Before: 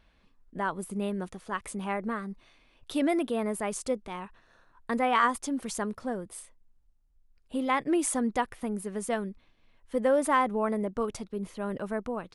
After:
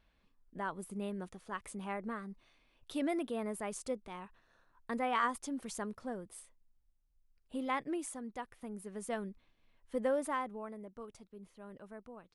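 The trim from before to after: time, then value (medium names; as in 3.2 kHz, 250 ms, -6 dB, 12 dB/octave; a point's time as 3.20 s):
7.77 s -8 dB
8.20 s -16.5 dB
9.24 s -7 dB
10.04 s -7 dB
10.74 s -17.5 dB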